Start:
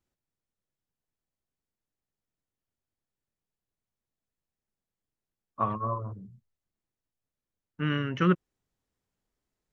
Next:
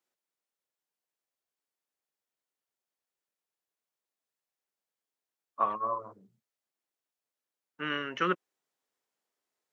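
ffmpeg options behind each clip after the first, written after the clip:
-af "highpass=460,volume=1.12"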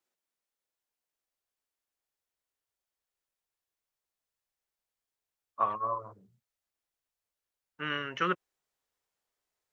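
-af "asubboost=boost=6:cutoff=91"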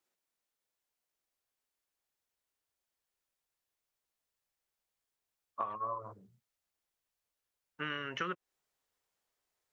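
-af "acompressor=threshold=0.0178:ratio=6,volume=1.12"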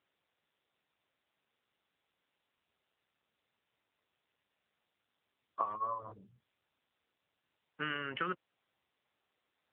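-af "volume=1.19" -ar 8000 -c:a libopencore_amrnb -b:a 7950

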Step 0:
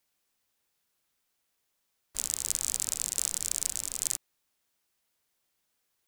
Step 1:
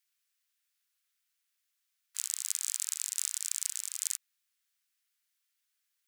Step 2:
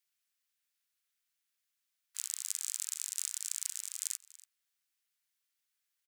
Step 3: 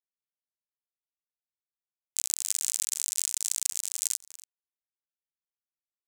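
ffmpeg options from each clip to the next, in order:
-af "highpass=f=1400:w=0.5412,highpass=f=1400:w=1.3066,volume=0.708"
-af "aecho=1:1:285:0.106,volume=0.668"
-af "acrusher=bits=7:mix=0:aa=0.000001,volume=2.51"

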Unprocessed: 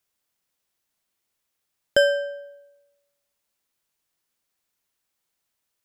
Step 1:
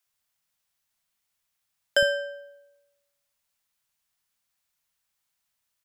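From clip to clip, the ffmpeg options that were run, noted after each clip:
-filter_complex "[0:a]equalizer=f=390:w=1.2:g=-9,acrossover=split=300[s0][s1];[s0]adelay=60[s2];[s2][s1]amix=inputs=2:normalize=0"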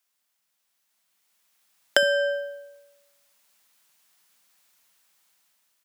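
-af "acompressor=threshold=0.0355:ratio=10,highpass=f=180:w=0.5412,highpass=f=180:w=1.3066,dynaudnorm=f=530:g=5:m=3.76,volume=1.33"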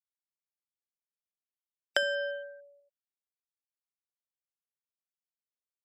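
-af "highshelf=f=7400:g=-8,afftfilt=real='re*gte(hypot(re,im),0.0158)':imag='im*gte(hypot(re,im),0.0158)':win_size=1024:overlap=0.75,lowshelf=f=340:g=-11.5,volume=0.473"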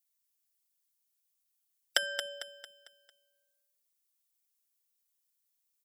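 -af "aecho=1:1:6:0.71,aecho=1:1:225|450|675|900|1125:0.376|0.162|0.0695|0.0299|0.0128,crystalizer=i=7.5:c=0,volume=0.447"

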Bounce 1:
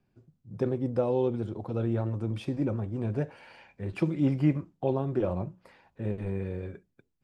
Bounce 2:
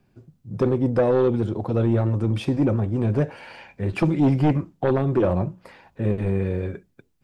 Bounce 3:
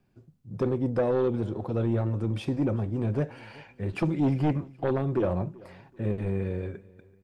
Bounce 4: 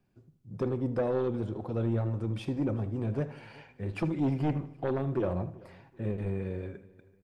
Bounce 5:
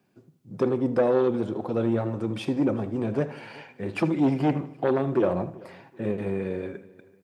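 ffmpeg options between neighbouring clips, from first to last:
-af "aeval=exprs='0.224*sin(PI/2*2*val(0)/0.224)':c=same"
-af "aecho=1:1:384|768:0.0708|0.0262,volume=0.501"
-filter_complex "[0:a]asplit=2[s0][s1];[s1]adelay=79,lowpass=f=3900:p=1,volume=0.2,asplit=2[s2][s3];[s3]adelay=79,lowpass=f=3900:p=1,volume=0.42,asplit=2[s4][s5];[s5]adelay=79,lowpass=f=3900:p=1,volume=0.42,asplit=2[s6][s7];[s7]adelay=79,lowpass=f=3900:p=1,volume=0.42[s8];[s0][s2][s4][s6][s8]amix=inputs=5:normalize=0,volume=0.631"
-af "highpass=190,volume=2.51"

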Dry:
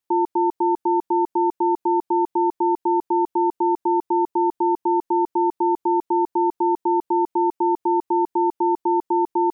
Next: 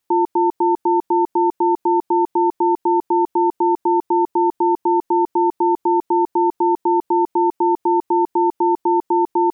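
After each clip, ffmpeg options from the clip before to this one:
-af "alimiter=level_in=7.08:limit=0.891:release=50:level=0:latency=1,volume=0.376"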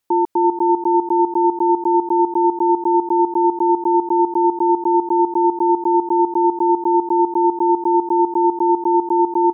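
-af "aecho=1:1:339:0.335"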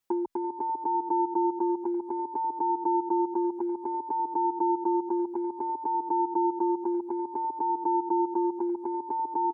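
-filter_complex "[0:a]acompressor=threshold=0.112:ratio=6,asplit=2[s0][s1];[s1]adelay=5.8,afreqshift=0.59[s2];[s0][s2]amix=inputs=2:normalize=1,volume=0.75"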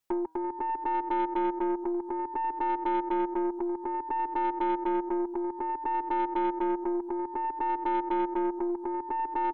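-af "bandreject=f=159.5:t=h:w=4,bandreject=f=319:t=h:w=4,bandreject=f=478.5:t=h:w=4,bandreject=f=638:t=h:w=4,bandreject=f=797.5:t=h:w=4,bandreject=f=957:t=h:w=4,bandreject=f=1116.5:t=h:w=4,bandreject=f=1276:t=h:w=4,bandreject=f=1435.5:t=h:w=4,bandreject=f=1595:t=h:w=4,bandreject=f=1754.5:t=h:w=4,bandreject=f=1914:t=h:w=4,bandreject=f=2073.5:t=h:w=4,bandreject=f=2233:t=h:w=4,bandreject=f=2392.5:t=h:w=4,bandreject=f=2552:t=h:w=4,bandreject=f=2711.5:t=h:w=4,bandreject=f=2871:t=h:w=4,bandreject=f=3030.5:t=h:w=4,bandreject=f=3190:t=h:w=4,bandreject=f=3349.5:t=h:w=4,bandreject=f=3509:t=h:w=4,bandreject=f=3668.5:t=h:w=4,bandreject=f=3828:t=h:w=4,bandreject=f=3987.5:t=h:w=4,bandreject=f=4147:t=h:w=4,bandreject=f=4306.5:t=h:w=4,bandreject=f=4466:t=h:w=4,bandreject=f=4625.5:t=h:w=4,bandreject=f=4785:t=h:w=4,bandreject=f=4944.5:t=h:w=4,bandreject=f=5104:t=h:w=4,bandreject=f=5263.5:t=h:w=4,bandreject=f=5423:t=h:w=4,bandreject=f=5582.5:t=h:w=4,bandreject=f=5742:t=h:w=4,bandreject=f=5901.5:t=h:w=4,aeval=exprs='0.15*(cos(1*acos(clip(val(0)/0.15,-1,1)))-cos(1*PI/2))+0.0119*(cos(4*acos(clip(val(0)/0.15,-1,1)))-cos(4*PI/2))+0.00944*(cos(5*acos(clip(val(0)/0.15,-1,1)))-cos(5*PI/2))':c=same,volume=0.75"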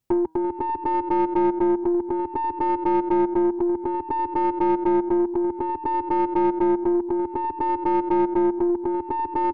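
-filter_complex "[0:a]asplit=2[s0][s1];[s1]adynamicsmooth=sensitivity=1:basefreq=740,volume=1.26[s2];[s0][s2]amix=inputs=2:normalize=0,equalizer=f=86:w=0.55:g=12"

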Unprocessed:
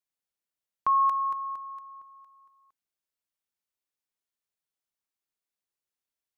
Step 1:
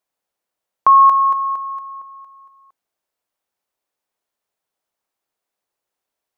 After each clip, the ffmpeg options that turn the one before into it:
-af "equalizer=f=670:t=o:w=2.2:g=10.5,volume=2"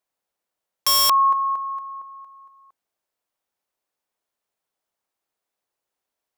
-af "aeval=exprs='(mod(3.16*val(0)+1,2)-1)/3.16':c=same,volume=0.794"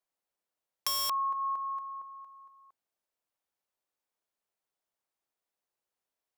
-af "acompressor=threshold=0.0708:ratio=6,volume=0.473"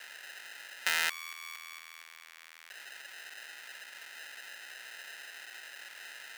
-af "aeval=exprs='val(0)+0.5*0.00794*sgn(val(0))':c=same,acrusher=samples=39:mix=1:aa=0.000001,highpass=f=1900:t=q:w=2,volume=2.82"

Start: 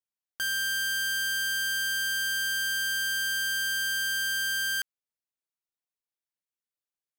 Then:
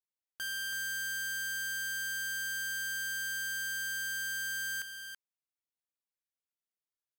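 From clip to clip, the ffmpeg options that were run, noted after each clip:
-af "aecho=1:1:329:0.422,volume=0.398"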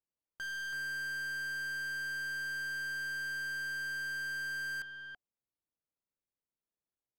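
-af "adynamicsmooth=sensitivity=5.5:basefreq=930,bandreject=f=730:w=16,aeval=exprs='0.0158*(cos(1*acos(clip(val(0)/0.0158,-1,1)))-cos(1*PI/2))+0.002*(cos(5*acos(clip(val(0)/0.0158,-1,1)))-cos(5*PI/2))':c=same,volume=1.26"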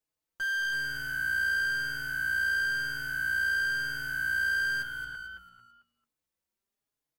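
-filter_complex "[0:a]asplit=2[s0][s1];[s1]adelay=14,volume=0.316[s2];[s0][s2]amix=inputs=2:normalize=0,asplit=2[s3][s4];[s4]asplit=4[s5][s6][s7][s8];[s5]adelay=222,afreqshift=-59,volume=0.473[s9];[s6]adelay=444,afreqshift=-118,volume=0.176[s10];[s7]adelay=666,afreqshift=-177,volume=0.0646[s11];[s8]adelay=888,afreqshift=-236,volume=0.024[s12];[s9][s10][s11][s12]amix=inputs=4:normalize=0[s13];[s3][s13]amix=inputs=2:normalize=0,asplit=2[s14][s15];[s15]adelay=4.3,afreqshift=1[s16];[s14][s16]amix=inputs=2:normalize=1,volume=2.51"

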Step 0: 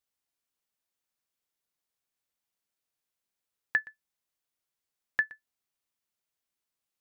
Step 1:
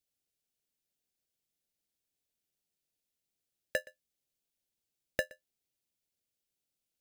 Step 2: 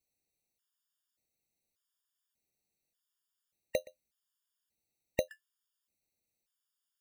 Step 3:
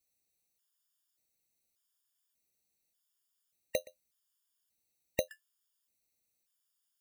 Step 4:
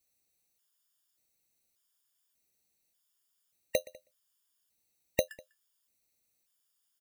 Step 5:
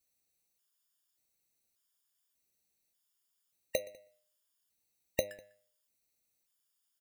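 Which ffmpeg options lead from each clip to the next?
-filter_complex "[0:a]equalizer=f=1600:t=o:w=0.77:g=-3.5,acrossover=split=1800[s0][s1];[s0]acrusher=samples=39:mix=1:aa=0.000001[s2];[s2][s1]amix=inputs=2:normalize=0"
-af "afftfilt=real='re*gt(sin(2*PI*0.85*pts/sr)*(1-2*mod(floor(b*sr/1024/930),2)),0)':imag='im*gt(sin(2*PI*0.85*pts/sr)*(1-2*mod(floor(b*sr/1024/930),2)),0)':win_size=1024:overlap=0.75,volume=1.5"
-af "highshelf=f=3900:g=7.5,volume=0.841"
-filter_complex "[0:a]asplit=2[s0][s1];[s1]adelay=198.3,volume=0.0631,highshelf=f=4000:g=-4.46[s2];[s0][s2]amix=inputs=2:normalize=0,volume=1.5"
-af "bandreject=f=101.6:t=h:w=4,bandreject=f=203.2:t=h:w=4,bandreject=f=304.8:t=h:w=4,bandreject=f=406.4:t=h:w=4,bandreject=f=508:t=h:w=4,bandreject=f=609.6:t=h:w=4,bandreject=f=711.2:t=h:w=4,bandreject=f=812.8:t=h:w=4,bandreject=f=914.4:t=h:w=4,bandreject=f=1016:t=h:w=4,bandreject=f=1117.6:t=h:w=4,bandreject=f=1219.2:t=h:w=4,bandreject=f=1320.8:t=h:w=4,bandreject=f=1422.4:t=h:w=4,bandreject=f=1524:t=h:w=4,bandreject=f=1625.6:t=h:w=4,bandreject=f=1727.2:t=h:w=4,bandreject=f=1828.8:t=h:w=4,bandreject=f=1930.4:t=h:w=4,bandreject=f=2032:t=h:w=4,bandreject=f=2133.6:t=h:w=4,bandreject=f=2235.2:t=h:w=4,bandreject=f=2336.8:t=h:w=4,bandreject=f=2438.4:t=h:w=4,bandreject=f=2540:t=h:w=4,bandreject=f=2641.6:t=h:w=4,bandreject=f=2743.2:t=h:w=4,bandreject=f=2844.8:t=h:w=4,bandreject=f=2946.4:t=h:w=4,bandreject=f=3048:t=h:w=4,bandreject=f=3149.6:t=h:w=4,bandreject=f=3251.2:t=h:w=4,bandreject=f=3352.8:t=h:w=4,bandreject=f=3454.4:t=h:w=4,bandreject=f=3556:t=h:w=4,bandreject=f=3657.6:t=h:w=4,bandreject=f=3759.2:t=h:w=4,bandreject=f=3860.8:t=h:w=4,bandreject=f=3962.4:t=h:w=4,volume=0.75"

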